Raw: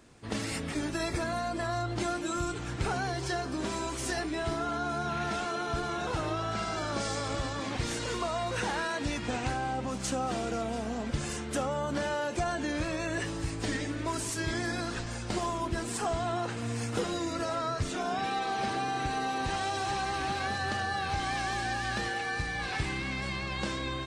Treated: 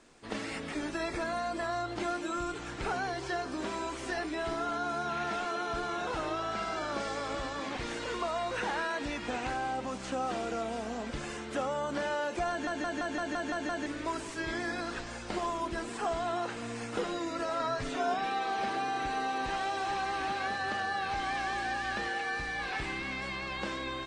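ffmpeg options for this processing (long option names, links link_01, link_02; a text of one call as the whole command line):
ffmpeg -i in.wav -filter_complex "[0:a]asettb=1/sr,asplit=3[link_01][link_02][link_03];[link_01]atrim=end=17.594[link_04];[link_02]atrim=start=17.59:end=18.14,asetpts=PTS-STARTPTS,afade=type=in:duration=0.004:curve=qsin,afade=type=out:start_time=0.546:duration=0.004:curve=qsin,aecho=1:1:7.3:0.79,atrim=end_sample=24255[link_05];[link_03]atrim=start=18.136[link_06];[link_04][link_05]acrossfade=duration=0.004:curve1=hsin:curve2=qsin[link_07];[link_07][link_06]acrossfade=duration=0.004:curve1=qsin:curve2=hsin,asplit=9[link_08][link_09][link_10][link_11][link_12][link_13][link_14][link_15][link_16];[link_08]atrim=end=12.672[link_17];[link_09]atrim=start=12.498:end=12.672[link_18];[link_10]atrim=start=12.498:end=12.672[link_19];[link_11]atrim=start=12.498:end=12.672[link_20];[link_12]atrim=start=12.498:end=12.672[link_21];[link_13]atrim=start=12.498:end=12.672[link_22];[link_14]atrim=start=12.498:end=12.672[link_23];[link_15]atrim=start=12.498:end=12.672[link_24];[link_16]atrim=start=13.858[link_25];[link_17][link_18]acrossfade=duration=0.004:curve1=hsin:curve2=hsin[link_26];[link_26][link_19]acrossfade=duration=0.004:curve1=hsin:curve2=hsin[link_27];[link_27][link_20]acrossfade=duration=0.004:curve1=hsin:curve2=hsin[link_28];[link_28][link_21]acrossfade=duration=0.004:curve1=hsin:curve2=hsin[link_29];[link_29][link_22]acrossfade=duration=0.004:curve1=hsin:curve2=hsin[link_30];[link_30][link_23]acrossfade=duration=0.004:curve1=hsin:curve2=hsin[link_31];[link_31][link_24]acrossfade=duration=0.004:curve1=hsin:curve2=hsin[link_32];[link_32][link_25]acrossfade=duration=0.004:curve1=hsin:curve2=hsin,lowpass=frequency=9700:width=0.5412,lowpass=frequency=9700:width=1.3066,acrossover=split=3400[link_33][link_34];[link_34]acompressor=threshold=-49dB:ratio=4:attack=1:release=60[link_35];[link_33][link_35]amix=inputs=2:normalize=0,equalizer=frequency=98:width_type=o:width=1.7:gain=-13.5" out.wav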